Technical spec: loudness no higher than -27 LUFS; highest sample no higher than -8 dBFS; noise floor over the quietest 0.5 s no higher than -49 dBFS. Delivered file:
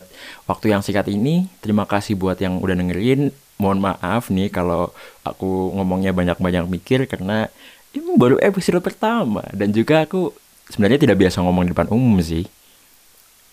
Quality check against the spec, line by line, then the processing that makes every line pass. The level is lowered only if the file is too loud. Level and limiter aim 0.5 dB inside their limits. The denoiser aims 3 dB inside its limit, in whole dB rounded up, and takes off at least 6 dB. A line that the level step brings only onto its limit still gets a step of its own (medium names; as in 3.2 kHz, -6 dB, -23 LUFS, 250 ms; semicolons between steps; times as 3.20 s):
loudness -19.0 LUFS: fail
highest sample -3.0 dBFS: fail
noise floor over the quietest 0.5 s -51 dBFS: pass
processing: trim -8.5 dB